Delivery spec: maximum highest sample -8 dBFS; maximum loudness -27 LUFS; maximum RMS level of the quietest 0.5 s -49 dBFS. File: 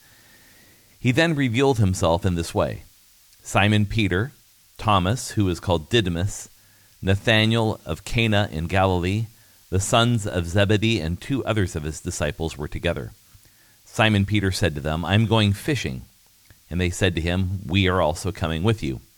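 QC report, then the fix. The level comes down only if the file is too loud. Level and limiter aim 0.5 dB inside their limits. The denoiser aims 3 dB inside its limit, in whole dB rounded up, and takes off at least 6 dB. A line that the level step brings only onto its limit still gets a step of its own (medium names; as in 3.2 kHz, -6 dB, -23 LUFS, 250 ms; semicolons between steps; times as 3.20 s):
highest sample -5.0 dBFS: fail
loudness -22.5 LUFS: fail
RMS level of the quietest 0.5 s -54 dBFS: pass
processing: trim -5 dB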